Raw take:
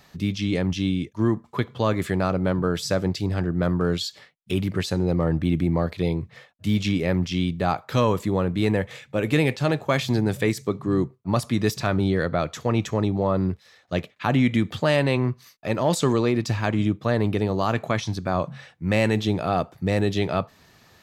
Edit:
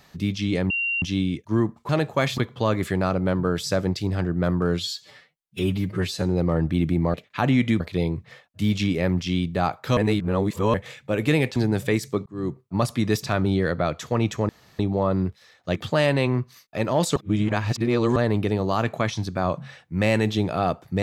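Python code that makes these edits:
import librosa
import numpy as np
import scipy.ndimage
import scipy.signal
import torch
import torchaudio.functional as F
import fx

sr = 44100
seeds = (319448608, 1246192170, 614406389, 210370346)

y = fx.edit(x, sr, fx.insert_tone(at_s=0.7, length_s=0.32, hz=2760.0, db=-22.0),
    fx.stretch_span(start_s=3.97, length_s=0.96, factor=1.5),
    fx.reverse_span(start_s=8.02, length_s=0.77),
    fx.move(start_s=9.61, length_s=0.49, to_s=1.57),
    fx.fade_in_span(start_s=10.8, length_s=0.34),
    fx.insert_room_tone(at_s=13.03, length_s=0.3),
    fx.move(start_s=14.0, length_s=0.66, to_s=5.85),
    fx.reverse_span(start_s=16.06, length_s=1.0), tone=tone)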